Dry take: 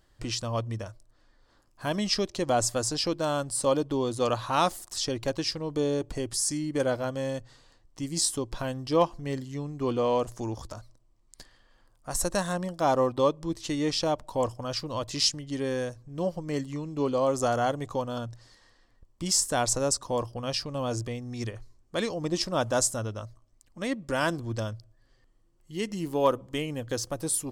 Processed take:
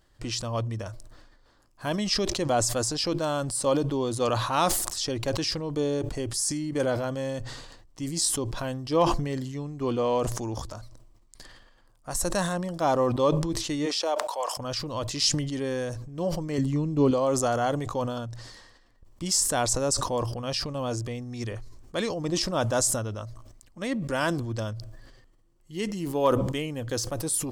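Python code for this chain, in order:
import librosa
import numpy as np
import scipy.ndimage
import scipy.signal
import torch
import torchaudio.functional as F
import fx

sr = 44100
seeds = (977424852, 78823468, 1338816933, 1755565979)

y = fx.highpass(x, sr, hz=fx.line((13.85, 280.0), (14.57, 750.0)), slope=24, at=(13.85, 14.57), fade=0.02)
y = fx.low_shelf(y, sr, hz=400.0, db=10.5, at=(16.58, 17.11))
y = fx.sustainer(y, sr, db_per_s=44.0)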